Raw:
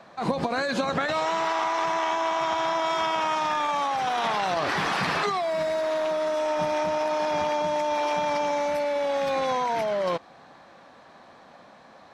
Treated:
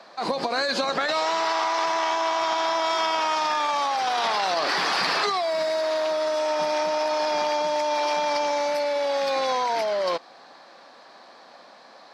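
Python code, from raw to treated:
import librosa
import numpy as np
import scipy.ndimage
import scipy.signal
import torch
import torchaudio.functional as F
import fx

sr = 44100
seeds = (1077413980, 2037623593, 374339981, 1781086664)

p1 = scipy.signal.sosfilt(scipy.signal.butter(2, 320.0, 'highpass', fs=sr, output='sos'), x)
p2 = fx.peak_eq(p1, sr, hz=4700.0, db=11.0, octaves=0.47)
p3 = 10.0 ** (-22.5 / 20.0) * np.tanh(p2 / 10.0 ** (-22.5 / 20.0))
y = p2 + (p3 * 10.0 ** (-12.0 / 20.0))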